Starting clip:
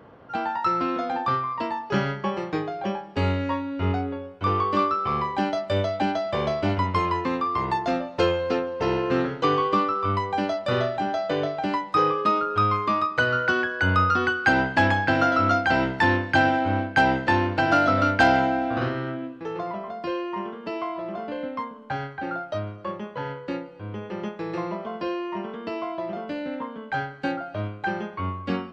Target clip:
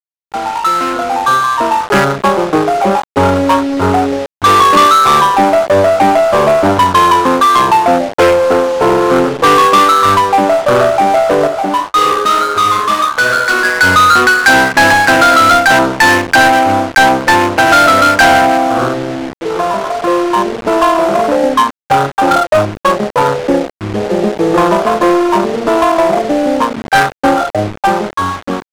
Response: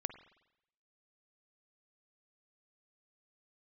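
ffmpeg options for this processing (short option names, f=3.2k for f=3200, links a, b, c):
-filter_complex "[0:a]afwtdn=0.0398,highpass=f=130:p=1,dynaudnorm=f=660:g=5:m=16dB,asplit=2[a][b];[b]highpass=f=720:p=1,volume=9dB,asoftclip=type=tanh:threshold=-0.5dB[c];[a][c]amix=inputs=2:normalize=0,lowpass=f=5.2k:p=1,volume=-6dB,asoftclip=type=tanh:threshold=-10dB,acrusher=bits=4:mix=0:aa=0.000001,adynamicsmooth=sensitivity=4:basefreq=630,asettb=1/sr,asplit=3[d][e][f];[d]atrim=end=11.474[g];[e]atrim=start=11.47:end=13.65,asetpts=PTS-STARTPTS,afade=t=in:d=0.004:c=qsin,afade=t=out:st=2.176:d=0.004:c=qsin,flanger=delay=8.9:depth=7.9:regen=-47:speed=2:shape=sinusoidal[h];[f]atrim=start=13.646[i];[g][h]acrossfade=d=0.004:c1=hsin:c2=qsin[j];[j][i]acrossfade=d=0.004:c1=qsin:c2=hsin,volume=7.5dB"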